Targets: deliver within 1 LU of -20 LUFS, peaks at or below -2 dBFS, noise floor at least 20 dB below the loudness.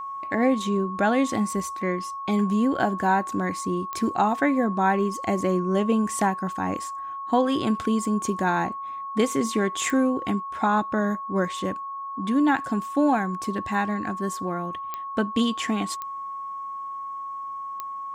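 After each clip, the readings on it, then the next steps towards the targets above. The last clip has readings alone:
clicks found 5; steady tone 1.1 kHz; tone level -31 dBFS; loudness -25.5 LUFS; peak level -9.0 dBFS; loudness target -20.0 LUFS
-> de-click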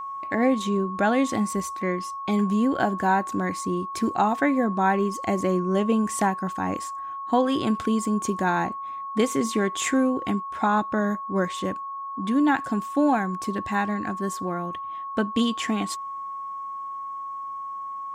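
clicks found 0; steady tone 1.1 kHz; tone level -31 dBFS
-> band-stop 1.1 kHz, Q 30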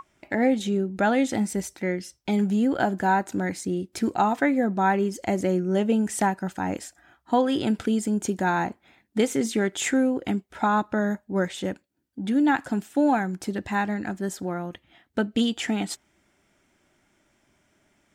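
steady tone not found; loudness -25.5 LUFS; peak level -9.5 dBFS; loudness target -20.0 LUFS
-> trim +5.5 dB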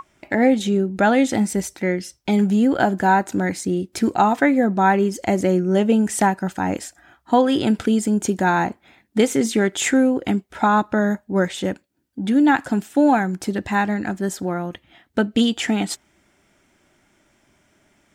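loudness -20.0 LUFS; peak level -4.0 dBFS; noise floor -64 dBFS

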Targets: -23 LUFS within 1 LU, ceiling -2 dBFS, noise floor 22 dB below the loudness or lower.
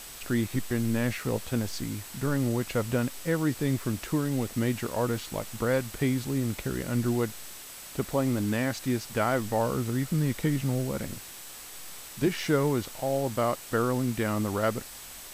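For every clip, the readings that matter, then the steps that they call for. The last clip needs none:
steady tone 8 kHz; tone level -51 dBFS; noise floor -44 dBFS; noise floor target -51 dBFS; loudness -29.0 LUFS; peak level -12.5 dBFS; loudness target -23.0 LUFS
-> band-stop 8 kHz, Q 30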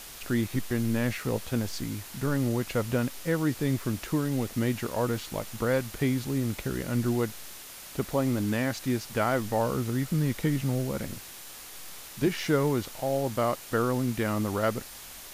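steady tone not found; noise floor -45 dBFS; noise floor target -51 dBFS
-> noise print and reduce 6 dB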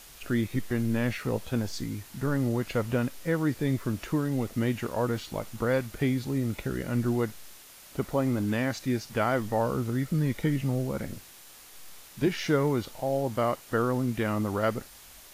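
noise floor -51 dBFS; noise floor target -52 dBFS
-> noise print and reduce 6 dB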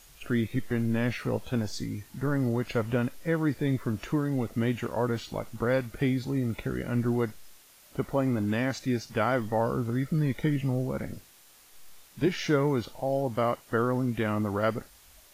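noise floor -56 dBFS; loudness -29.5 LUFS; peak level -12.5 dBFS; loudness target -23.0 LUFS
-> trim +6.5 dB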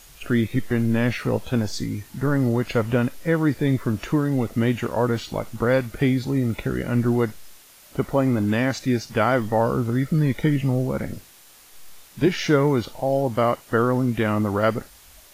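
loudness -23.0 LUFS; peak level -6.0 dBFS; noise floor -50 dBFS

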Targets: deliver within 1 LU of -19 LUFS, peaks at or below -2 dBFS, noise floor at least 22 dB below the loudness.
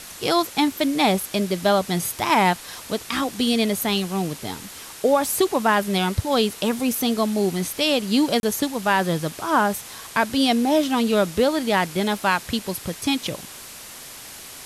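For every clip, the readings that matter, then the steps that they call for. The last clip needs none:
dropouts 1; longest dropout 31 ms; noise floor -40 dBFS; noise floor target -44 dBFS; loudness -22.0 LUFS; peak level -7.0 dBFS; loudness target -19.0 LUFS
-> interpolate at 8.40 s, 31 ms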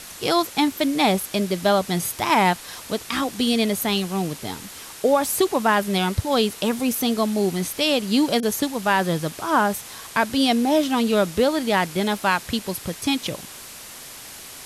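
dropouts 0; noise floor -40 dBFS; noise floor target -44 dBFS
-> noise reduction 6 dB, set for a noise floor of -40 dBFS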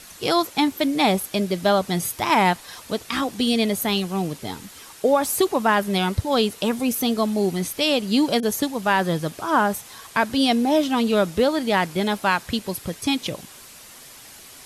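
noise floor -44 dBFS; loudness -22.0 LUFS; peak level -7.0 dBFS; loudness target -19.0 LUFS
-> trim +3 dB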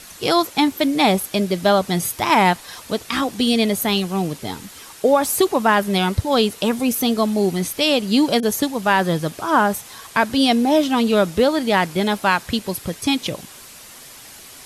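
loudness -19.0 LUFS; peak level -4.0 dBFS; noise floor -41 dBFS

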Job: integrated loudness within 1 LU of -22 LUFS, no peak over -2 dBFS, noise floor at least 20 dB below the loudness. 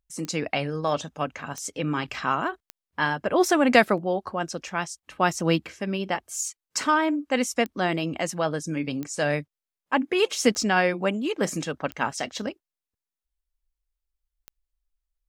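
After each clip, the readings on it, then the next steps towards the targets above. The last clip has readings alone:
clicks found 8; loudness -26.0 LUFS; peak level -4.5 dBFS; loudness target -22.0 LUFS
-> de-click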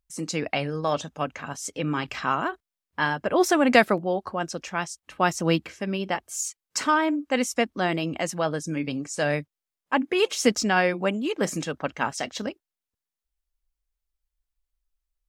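clicks found 0; loudness -26.0 LUFS; peak level -4.5 dBFS; loudness target -22.0 LUFS
-> trim +4 dB; peak limiter -2 dBFS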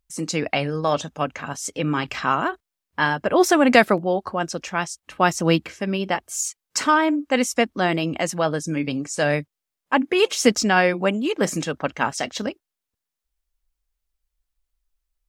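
loudness -22.0 LUFS; peak level -2.0 dBFS; noise floor -85 dBFS

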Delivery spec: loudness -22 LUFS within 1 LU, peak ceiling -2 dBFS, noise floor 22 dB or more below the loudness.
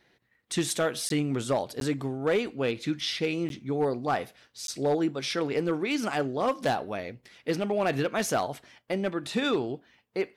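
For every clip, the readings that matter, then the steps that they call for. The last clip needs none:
clipped samples 0.6%; clipping level -19.0 dBFS; dropouts 4; longest dropout 12 ms; loudness -29.5 LUFS; peak level -19.0 dBFS; loudness target -22.0 LUFS
-> clip repair -19 dBFS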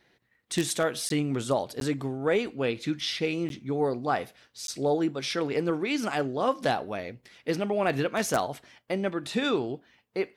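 clipped samples 0.0%; dropouts 4; longest dropout 12 ms
-> interpolate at 1.09/1.80/3.49/4.67 s, 12 ms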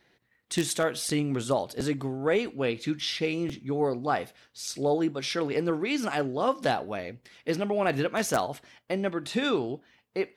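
dropouts 0; loudness -29.0 LUFS; peak level -10.0 dBFS; loudness target -22.0 LUFS
-> trim +7 dB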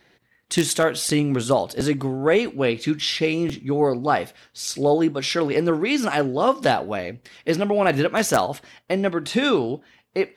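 loudness -22.0 LUFS; peak level -3.0 dBFS; noise floor -63 dBFS

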